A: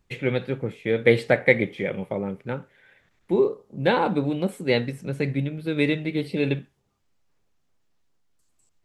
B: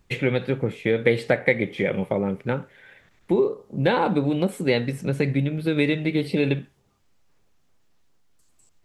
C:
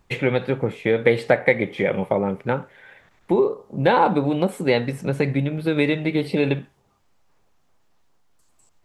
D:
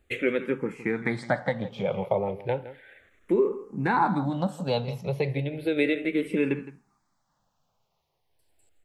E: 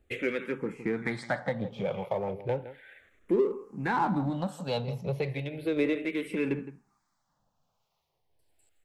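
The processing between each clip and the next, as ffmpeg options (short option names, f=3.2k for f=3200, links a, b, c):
-af "acompressor=threshold=-26dB:ratio=2.5,volume=6.5dB"
-af "equalizer=f=880:w=0.96:g=7"
-filter_complex "[0:a]asplit=2[a][b];[b]adelay=163.3,volume=-15dB,highshelf=f=4k:g=-3.67[c];[a][c]amix=inputs=2:normalize=0,asplit=2[d][e];[e]afreqshift=-0.34[f];[d][f]amix=inputs=2:normalize=1,volume=-3dB"
-filter_complex "[0:a]acrossover=split=840[a][b];[a]aeval=exprs='val(0)*(1-0.5/2+0.5/2*cos(2*PI*1.2*n/s))':c=same[c];[b]aeval=exprs='val(0)*(1-0.5/2-0.5/2*cos(2*PI*1.2*n/s))':c=same[d];[c][d]amix=inputs=2:normalize=0,asplit=2[e][f];[f]volume=31dB,asoftclip=hard,volume=-31dB,volume=-8dB[g];[e][g]amix=inputs=2:normalize=0,volume=-3dB"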